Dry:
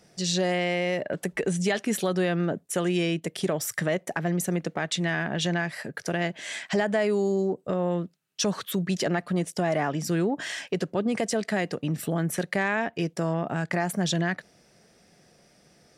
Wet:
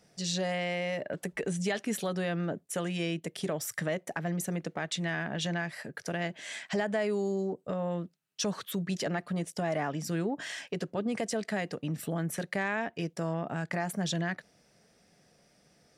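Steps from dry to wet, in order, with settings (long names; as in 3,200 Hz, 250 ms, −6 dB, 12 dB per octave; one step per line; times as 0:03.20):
notch filter 360 Hz, Q 12
level −5.5 dB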